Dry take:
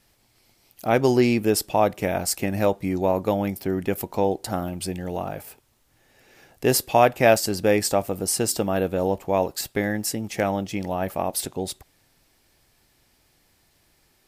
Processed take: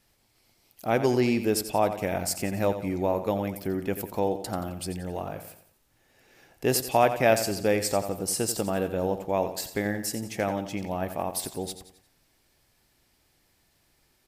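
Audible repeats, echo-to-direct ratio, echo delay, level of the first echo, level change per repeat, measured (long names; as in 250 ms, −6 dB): 4, −10.0 dB, 88 ms, −11.0 dB, −7.5 dB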